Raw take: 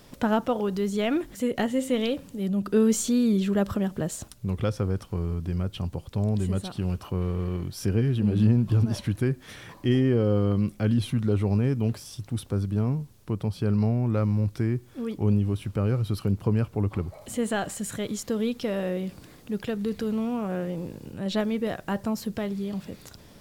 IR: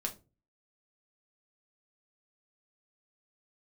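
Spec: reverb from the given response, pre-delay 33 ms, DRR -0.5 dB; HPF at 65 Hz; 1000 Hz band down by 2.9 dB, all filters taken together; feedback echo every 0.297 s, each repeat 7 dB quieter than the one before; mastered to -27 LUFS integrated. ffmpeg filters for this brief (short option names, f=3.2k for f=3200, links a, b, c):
-filter_complex "[0:a]highpass=65,equalizer=f=1k:t=o:g=-4,aecho=1:1:297|594|891|1188|1485:0.447|0.201|0.0905|0.0407|0.0183,asplit=2[a][b];[1:a]atrim=start_sample=2205,adelay=33[c];[b][c]afir=irnorm=-1:irlink=0,volume=-0.5dB[d];[a][d]amix=inputs=2:normalize=0,volume=-5dB"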